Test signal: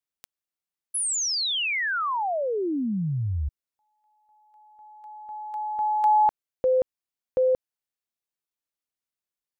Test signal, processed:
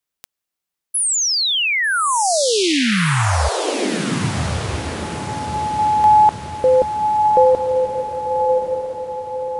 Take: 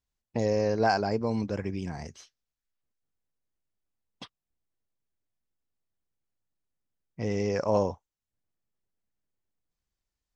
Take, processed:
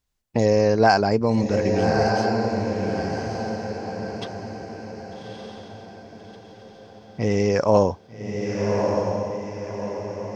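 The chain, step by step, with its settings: echo that smears into a reverb 1214 ms, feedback 46%, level -3 dB; trim +8 dB

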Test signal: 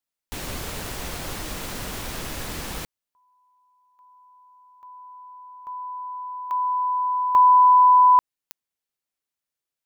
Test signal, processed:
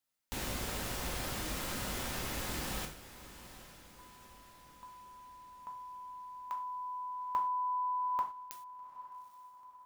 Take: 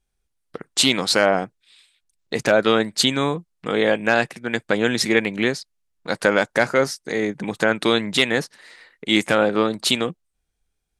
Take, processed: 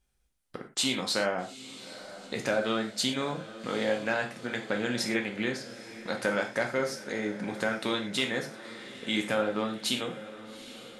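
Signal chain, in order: compression 1.5:1, threshold -50 dBFS; echo that smears into a reverb 830 ms, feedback 54%, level -15 dB; gated-style reverb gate 140 ms falling, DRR 2.5 dB

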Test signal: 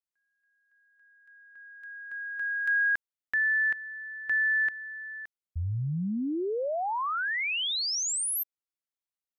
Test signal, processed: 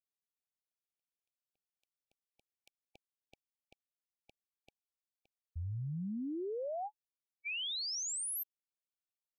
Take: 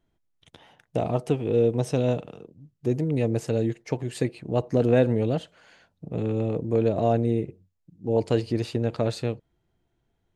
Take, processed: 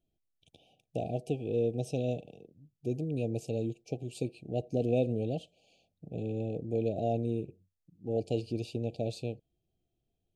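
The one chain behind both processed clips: brick-wall FIR band-stop 820–2300 Hz; trim -8.5 dB

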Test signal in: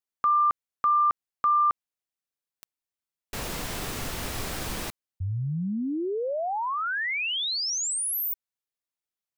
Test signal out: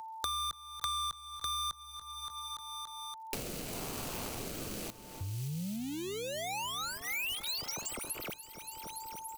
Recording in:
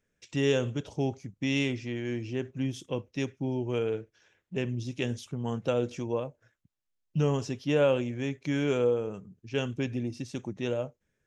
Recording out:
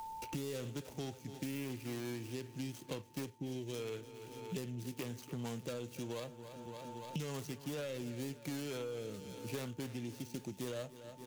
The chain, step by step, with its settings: median filter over 25 samples; peak limiter -23.5 dBFS; rotary cabinet horn 0.9 Hz; whistle 890 Hz -63 dBFS; saturation -24 dBFS; pre-emphasis filter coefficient 0.9; feedback delay 286 ms, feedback 59%, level -18 dB; three bands compressed up and down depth 100%; trim +11.5 dB

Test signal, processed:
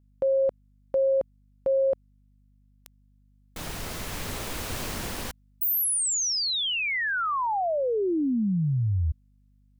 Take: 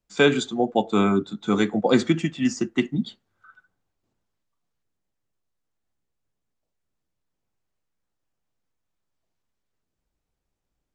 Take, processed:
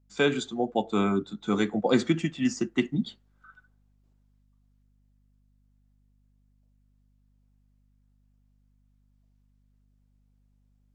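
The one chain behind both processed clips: gain riding within 4 dB 2 s; hum 50 Hz, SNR 33 dB; trim -4.5 dB

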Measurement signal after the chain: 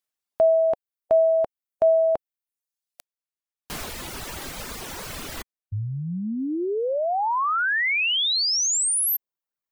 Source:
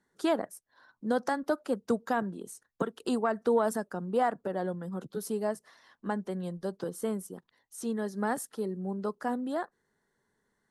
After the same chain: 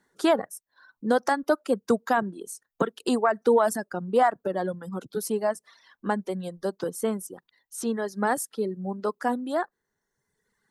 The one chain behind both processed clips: reverb removal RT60 1.2 s; bass shelf 250 Hz -4.5 dB; trim +7.5 dB

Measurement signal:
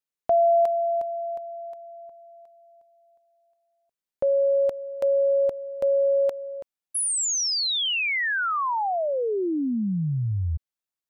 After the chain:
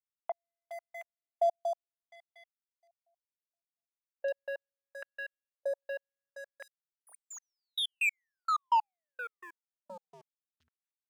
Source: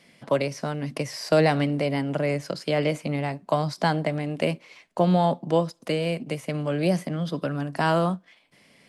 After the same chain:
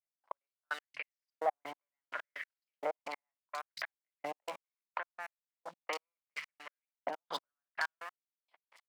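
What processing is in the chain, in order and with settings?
fade-in on the opening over 2.41 s; low-pass that closes with the level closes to 970 Hz, closed at -19 dBFS; low-pass 8.3 kHz 12 dB/octave; dynamic bell 2.1 kHz, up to +5 dB, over -46 dBFS, Q 2.5; compression 4:1, threshold -25 dBFS; waveshaping leveller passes 3; level held to a coarse grid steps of 15 dB; three bands offset in time mids, highs, lows 60/110 ms, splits 190/3000 Hz; trance gate "x..x....." 191 bpm -60 dB; LFO high-pass saw up 0.71 Hz 720–2600 Hz

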